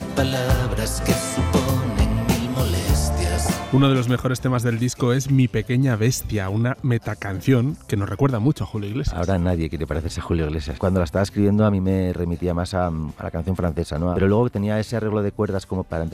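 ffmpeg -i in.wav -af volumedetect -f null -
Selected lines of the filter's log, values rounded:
mean_volume: -20.8 dB
max_volume: -7.1 dB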